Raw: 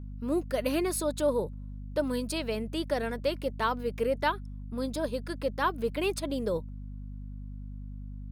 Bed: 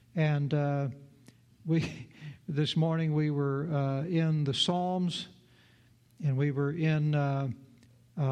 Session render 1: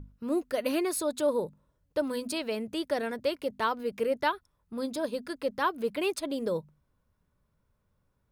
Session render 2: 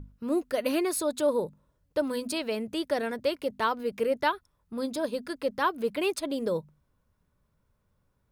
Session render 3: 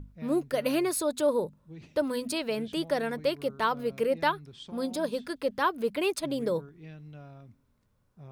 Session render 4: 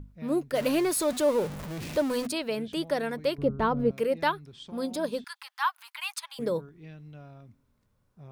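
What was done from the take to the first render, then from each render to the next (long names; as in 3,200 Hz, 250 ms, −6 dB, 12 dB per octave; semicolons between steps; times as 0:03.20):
mains-hum notches 50/100/150/200/250 Hz
level +1.5 dB
mix in bed −18.5 dB
0:00.55–0:02.27: converter with a step at zero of −32.5 dBFS; 0:03.38–0:03.91: spectral tilt −4.5 dB per octave; 0:05.24–0:06.39: Butterworth high-pass 840 Hz 72 dB per octave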